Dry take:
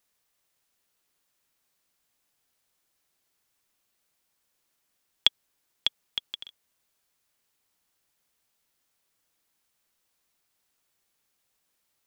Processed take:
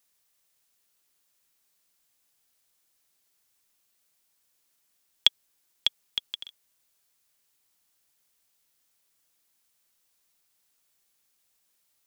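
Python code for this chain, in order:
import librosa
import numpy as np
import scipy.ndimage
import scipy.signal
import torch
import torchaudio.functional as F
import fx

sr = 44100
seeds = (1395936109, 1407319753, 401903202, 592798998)

y = fx.high_shelf(x, sr, hz=3400.0, db=7.0)
y = y * librosa.db_to_amplitude(-2.0)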